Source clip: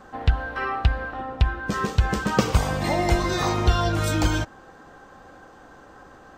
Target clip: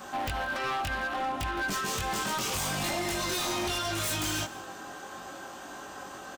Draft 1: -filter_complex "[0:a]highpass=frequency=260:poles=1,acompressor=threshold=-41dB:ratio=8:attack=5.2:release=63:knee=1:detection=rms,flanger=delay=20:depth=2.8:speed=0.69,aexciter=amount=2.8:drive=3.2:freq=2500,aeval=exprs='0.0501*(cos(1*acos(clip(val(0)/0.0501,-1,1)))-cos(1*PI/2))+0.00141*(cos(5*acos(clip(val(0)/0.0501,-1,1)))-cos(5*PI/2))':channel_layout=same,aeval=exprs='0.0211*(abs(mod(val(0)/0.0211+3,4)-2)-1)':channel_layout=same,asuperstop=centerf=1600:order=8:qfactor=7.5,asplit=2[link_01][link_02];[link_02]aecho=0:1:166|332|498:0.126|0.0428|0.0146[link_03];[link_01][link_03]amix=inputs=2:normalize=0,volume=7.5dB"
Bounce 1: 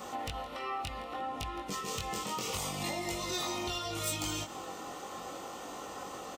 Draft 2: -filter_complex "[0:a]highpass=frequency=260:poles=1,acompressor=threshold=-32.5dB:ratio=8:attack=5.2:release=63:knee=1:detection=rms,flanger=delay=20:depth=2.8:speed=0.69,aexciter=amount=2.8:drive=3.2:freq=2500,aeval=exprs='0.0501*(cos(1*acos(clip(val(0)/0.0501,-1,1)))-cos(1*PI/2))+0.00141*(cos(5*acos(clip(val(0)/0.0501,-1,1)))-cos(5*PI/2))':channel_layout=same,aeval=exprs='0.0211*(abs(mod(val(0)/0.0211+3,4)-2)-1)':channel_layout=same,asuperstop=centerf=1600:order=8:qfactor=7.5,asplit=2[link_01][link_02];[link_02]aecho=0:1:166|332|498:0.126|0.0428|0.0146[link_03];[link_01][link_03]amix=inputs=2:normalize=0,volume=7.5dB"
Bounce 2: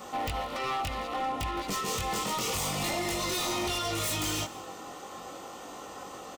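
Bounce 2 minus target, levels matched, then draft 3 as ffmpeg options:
2,000 Hz band −4.5 dB
-filter_complex "[0:a]highpass=frequency=260:poles=1,acompressor=threshold=-32.5dB:ratio=8:attack=5.2:release=63:knee=1:detection=rms,flanger=delay=20:depth=2.8:speed=0.69,aexciter=amount=2.8:drive=3.2:freq=2500,aeval=exprs='0.0501*(cos(1*acos(clip(val(0)/0.0501,-1,1)))-cos(1*PI/2))+0.00141*(cos(5*acos(clip(val(0)/0.0501,-1,1)))-cos(5*PI/2))':channel_layout=same,aeval=exprs='0.0211*(abs(mod(val(0)/0.0211+3,4)-2)-1)':channel_layout=same,asuperstop=centerf=480:order=8:qfactor=7.5,asplit=2[link_01][link_02];[link_02]aecho=0:1:166|332|498:0.126|0.0428|0.0146[link_03];[link_01][link_03]amix=inputs=2:normalize=0,volume=7.5dB"

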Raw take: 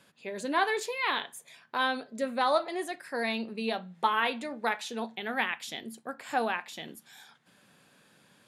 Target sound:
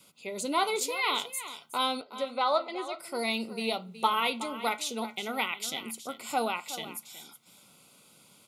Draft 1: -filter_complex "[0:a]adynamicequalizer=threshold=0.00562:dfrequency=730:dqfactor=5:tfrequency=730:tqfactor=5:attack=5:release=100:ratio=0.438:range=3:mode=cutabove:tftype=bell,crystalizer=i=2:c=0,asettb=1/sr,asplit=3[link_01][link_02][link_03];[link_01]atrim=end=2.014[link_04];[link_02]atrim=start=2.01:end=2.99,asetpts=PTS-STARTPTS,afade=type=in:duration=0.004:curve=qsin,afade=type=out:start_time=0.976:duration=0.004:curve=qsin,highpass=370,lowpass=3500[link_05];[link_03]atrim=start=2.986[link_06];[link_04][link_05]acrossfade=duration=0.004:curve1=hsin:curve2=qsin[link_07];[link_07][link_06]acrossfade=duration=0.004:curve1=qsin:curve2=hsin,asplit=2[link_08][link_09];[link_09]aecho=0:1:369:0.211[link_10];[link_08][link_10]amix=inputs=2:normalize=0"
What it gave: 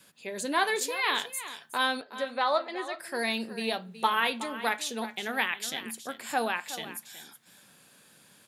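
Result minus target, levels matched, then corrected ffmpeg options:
2,000 Hz band +4.0 dB
-filter_complex "[0:a]adynamicequalizer=threshold=0.00562:dfrequency=730:dqfactor=5:tfrequency=730:tqfactor=5:attack=5:release=100:ratio=0.438:range=3:mode=cutabove:tftype=bell,asuperstop=centerf=1700:order=8:qfactor=3.7,crystalizer=i=2:c=0,asettb=1/sr,asplit=3[link_01][link_02][link_03];[link_01]atrim=end=2.014[link_04];[link_02]atrim=start=2.01:end=2.99,asetpts=PTS-STARTPTS,afade=type=in:duration=0.004:curve=qsin,afade=type=out:start_time=0.976:duration=0.004:curve=qsin,highpass=370,lowpass=3500[link_05];[link_03]atrim=start=2.986[link_06];[link_04][link_05]acrossfade=duration=0.004:curve1=hsin:curve2=qsin[link_07];[link_07][link_06]acrossfade=duration=0.004:curve1=qsin:curve2=hsin,asplit=2[link_08][link_09];[link_09]aecho=0:1:369:0.211[link_10];[link_08][link_10]amix=inputs=2:normalize=0"

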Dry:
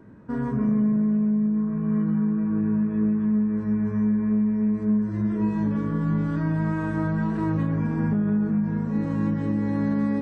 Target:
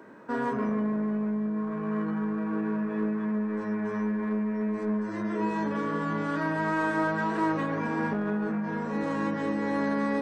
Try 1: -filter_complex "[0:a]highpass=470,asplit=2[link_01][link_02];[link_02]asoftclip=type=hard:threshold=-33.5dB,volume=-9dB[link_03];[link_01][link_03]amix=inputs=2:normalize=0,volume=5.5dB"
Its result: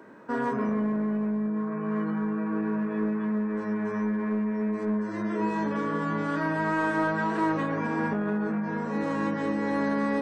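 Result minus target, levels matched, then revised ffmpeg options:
hard clipping: distortion −6 dB
-filter_complex "[0:a]highpass=470,asplit=2[link_01][link_02];[link_02]asoftclip=type=hard:threshold=-41dB,volume=-9dB[link_03];[link_01][link_03]amix=inputs=2:normalize=0,volume=5.5dB"

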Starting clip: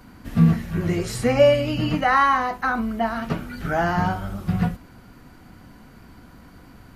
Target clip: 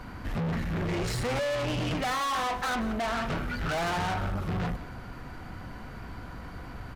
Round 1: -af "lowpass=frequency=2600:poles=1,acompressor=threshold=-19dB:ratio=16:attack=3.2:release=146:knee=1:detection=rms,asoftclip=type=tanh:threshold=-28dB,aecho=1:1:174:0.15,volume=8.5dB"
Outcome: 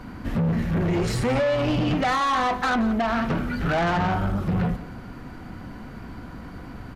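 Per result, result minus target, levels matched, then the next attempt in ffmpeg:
soft clipping: distortion −5 dB; 250 Hz band +2.5 dB
-af "lowpass=frequency=2600:poles=1,acompressor=threshold=-19dB:ratio=16:attack=3.2:release=146:knee=1:detection=rms,asoftclip=type=tanh:threshold=-36.5dB,aecho=1:1:174:0.15,volume=8.5dB"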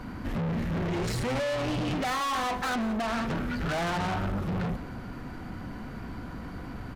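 250 Hz band +3.5 dB
-af "lowpass=frequency=2600:poles=1,equalizer=frequency=240:width_type=o:width=1.4:gain=-7.5,acompressor=threshold=-19dB:ratio=16:attack=3.2:release=146:knee=1:detection=rms,asoftclip=type=tanh:threshold=-36.5dB,aecho=1:1:174:0.15,volume=8.5dB"

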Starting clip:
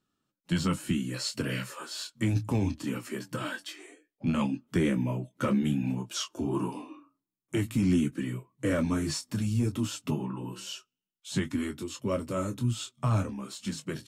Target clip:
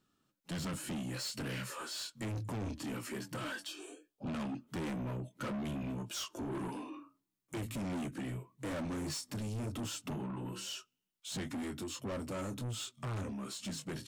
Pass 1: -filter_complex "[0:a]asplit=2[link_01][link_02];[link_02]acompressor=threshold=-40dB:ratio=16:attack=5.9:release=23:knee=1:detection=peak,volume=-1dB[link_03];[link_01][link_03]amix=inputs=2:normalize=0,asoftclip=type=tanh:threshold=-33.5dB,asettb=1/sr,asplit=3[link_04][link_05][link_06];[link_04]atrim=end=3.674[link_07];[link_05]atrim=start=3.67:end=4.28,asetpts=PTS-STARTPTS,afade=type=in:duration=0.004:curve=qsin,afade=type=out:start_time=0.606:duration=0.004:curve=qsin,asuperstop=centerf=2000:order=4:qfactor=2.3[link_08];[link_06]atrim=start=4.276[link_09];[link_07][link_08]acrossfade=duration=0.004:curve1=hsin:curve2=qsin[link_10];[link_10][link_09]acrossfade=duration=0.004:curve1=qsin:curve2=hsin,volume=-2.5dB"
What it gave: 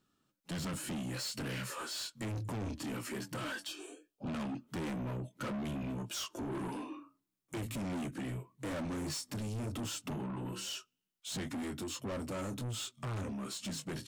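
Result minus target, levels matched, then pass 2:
downward compressor: peak gain reduction −9 dB
-filter_complex "[0:a]asplit=2[link_01][link_02];[link_02]acompressor=threshold=-49.5dB:ratio=16:attack=5.9:release=23:knee=1:detection=peak,volume=-1dB[link_03];[link_01][link_03]amix=inputs=2:normalize=0,asoftclip=type=tanh:threshold=-33.5dB,asettb=1/sr,asplit=3[link_04][link_05][link_06];[link_04]atrim=end=3.674[link_07];[link_05]atrim=start=3.67:end=4.28,asetpts=PTS-STARTPTS,afade=type=in:duration=0.004:curve=qsin,afade=type=out:start_time=0.606:duration=0.004:curve=qsin,asuperstop=centerf=2000:order=4:qfactor=2.3[link_08];[link_06]atrim=start=4.276[link_09];[link_07][link_08]acrossfade=duration=0.004:curve1=hsin:curve2=qsin[link_10];[link_10][link_09]acrossfade=duration=0.004:curve1=qsin:curve2=hsin,volume=-2.5dB"

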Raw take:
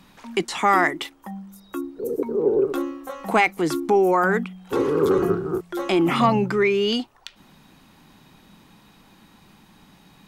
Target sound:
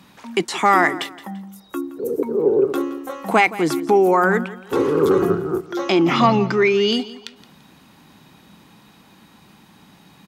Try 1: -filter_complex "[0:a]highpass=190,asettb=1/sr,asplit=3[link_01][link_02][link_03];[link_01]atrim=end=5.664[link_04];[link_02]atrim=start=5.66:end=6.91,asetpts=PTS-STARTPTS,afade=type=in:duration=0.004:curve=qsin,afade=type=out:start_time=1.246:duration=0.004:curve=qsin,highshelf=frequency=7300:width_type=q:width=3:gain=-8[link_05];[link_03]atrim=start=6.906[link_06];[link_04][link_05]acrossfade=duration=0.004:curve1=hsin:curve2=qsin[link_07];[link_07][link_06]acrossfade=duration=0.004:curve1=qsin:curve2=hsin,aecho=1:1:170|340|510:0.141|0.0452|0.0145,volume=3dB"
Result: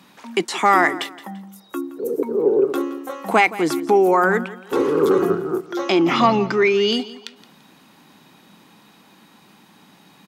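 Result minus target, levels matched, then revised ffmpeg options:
125 Hz band −4.0 dB
-filter_complex "[0:a]highpass=73,asettb=1/sr,asplit=3[link_01][link_02][link_03];[link_01]atrim=end=5.664[link_04];[link_02]atrim=start=5.66:end=6.91,asetpts=PTS-STARTPTS,afade=type=in:duration=0.004:curve=qsin,afade=type=out:start_time=1.246:duration=0.004:curve=qsin,highshelf=frequency=7300:width_type=q:width=3:gain=-8[link_05];[link_03]atrim=start=6.906[link_06];[link_04][link_05]acrossfade=duration=0.004:curve1=hsin:curve2=qsin[link_07];[link_07][link_06]acrossfade=duration=0.004:curve1=qsin:curve2=hsin,aecho=1:1:170|340|510:0.141|0.0452|0.0145,volume=3dB"

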